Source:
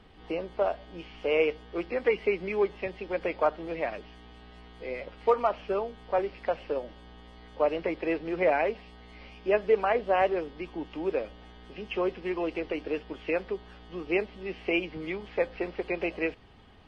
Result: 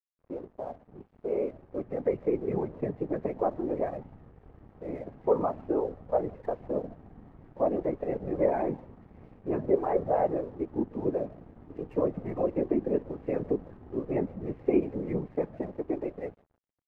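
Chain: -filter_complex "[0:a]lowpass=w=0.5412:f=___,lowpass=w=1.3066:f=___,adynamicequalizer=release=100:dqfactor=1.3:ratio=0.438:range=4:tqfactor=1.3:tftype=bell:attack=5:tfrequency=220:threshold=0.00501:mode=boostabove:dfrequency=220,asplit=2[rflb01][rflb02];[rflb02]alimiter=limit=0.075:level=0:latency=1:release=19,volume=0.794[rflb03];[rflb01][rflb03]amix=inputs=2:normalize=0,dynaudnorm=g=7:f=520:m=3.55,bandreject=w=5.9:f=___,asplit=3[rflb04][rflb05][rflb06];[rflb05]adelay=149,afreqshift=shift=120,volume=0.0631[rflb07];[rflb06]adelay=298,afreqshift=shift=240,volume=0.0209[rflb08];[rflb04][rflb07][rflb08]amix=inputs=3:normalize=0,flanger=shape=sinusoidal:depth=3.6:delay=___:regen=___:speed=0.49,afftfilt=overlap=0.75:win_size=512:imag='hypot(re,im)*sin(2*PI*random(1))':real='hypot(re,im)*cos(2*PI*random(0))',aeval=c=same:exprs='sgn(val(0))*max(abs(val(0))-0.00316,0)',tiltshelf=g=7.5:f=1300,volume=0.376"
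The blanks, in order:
1800, 1800, 1400, 1.4, -20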